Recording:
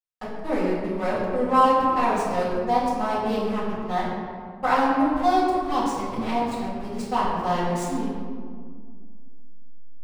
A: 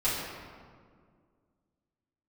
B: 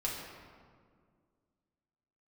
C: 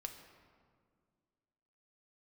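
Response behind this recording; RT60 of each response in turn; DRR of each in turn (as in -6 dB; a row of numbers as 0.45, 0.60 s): A; 2.0, 2.0, 2.0 s; -12.5, -5.0, 4.5 dB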